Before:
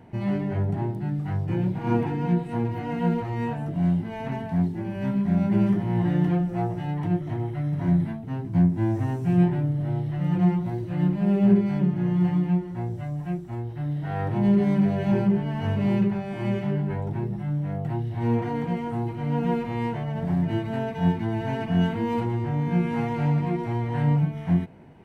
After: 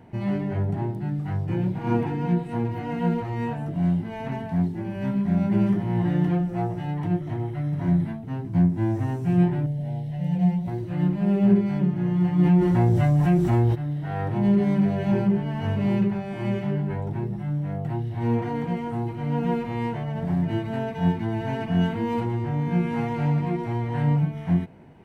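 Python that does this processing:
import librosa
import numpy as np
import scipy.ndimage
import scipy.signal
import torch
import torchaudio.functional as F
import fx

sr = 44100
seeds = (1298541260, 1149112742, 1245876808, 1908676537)

y = fx.fixed_phaser(x, sr, hz=330.0, stages=6, at=(9.66, 10.68))
y = fx.env_flatten(y, sr, amount_pct=70, at=(12.38, 13.74), fade=0.02)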